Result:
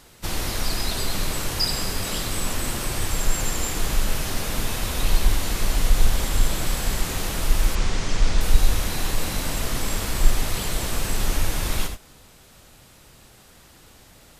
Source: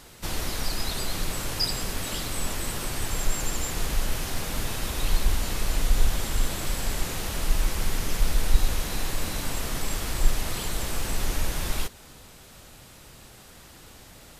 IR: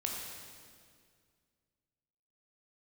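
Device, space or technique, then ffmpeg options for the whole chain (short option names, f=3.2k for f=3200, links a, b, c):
keyed gated reverb: -filter_complex "[0:a]asplit=3[a][b][c];[1:a]atrim=start_sample=2205[d];[b][d]afir=irnorm=-1:irlink=0[e];[c]apad=whole_len=634911[f];[e][f]sidechaingate=range=-33dB:threshold=-35dB:ratio=16:detection=peak,volume=-1.5dB[g];[a][g]amix=inputs=2:normalize=0,asettb=1/sr,asplit=3[h][i][j];[h]atrim=end=7.754[k];[i]atrim=start=7.75:end=8.41,asetpts=PTS-STARTPTS,afade=t=in:d=0.004:c=qsin,afade=t=out:st=0.656:d=0.004:c=qsin,lowpass=f=7.4k:w=0.5412,lowpass=f=7.4k:w=1.3066[l];[j]atrim=start=8.406[m];[k][l]acrossfade=d=0.004:c1=hsin:c2=qsin[n];[n][m]acrossfade=d=0.004:c1=qsin:c2=hsin,volume=-2dB"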